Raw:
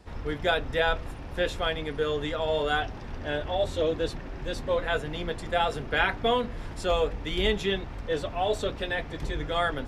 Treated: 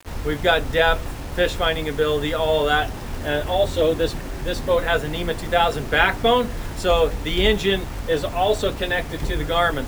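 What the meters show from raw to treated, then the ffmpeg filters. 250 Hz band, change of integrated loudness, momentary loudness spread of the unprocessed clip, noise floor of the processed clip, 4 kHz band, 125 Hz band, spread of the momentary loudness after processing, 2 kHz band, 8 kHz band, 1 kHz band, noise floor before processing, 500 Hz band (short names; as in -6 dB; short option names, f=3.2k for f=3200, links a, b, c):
+7.5 dB, +7.5 dB, 8 LU, -31 dBFS, +7.5 dB, +7.5 dB, 8 LU, +7.5 dB, +10.5 dB, +7.5 dB, -39 dBFS, +7.5 dB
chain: -af "acrusher=bits=7:mix=0:aa=0.000001,volume=7.5dB"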